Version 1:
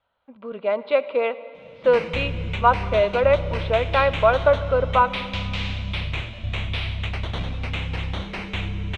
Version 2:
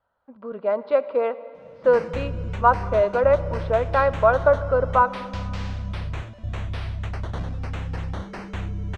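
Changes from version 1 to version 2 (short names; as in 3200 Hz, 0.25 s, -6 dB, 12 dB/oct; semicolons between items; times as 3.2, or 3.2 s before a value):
background: send -10.5 dB; master: add band shelf 2900 Hz -12 dB 1.1 oct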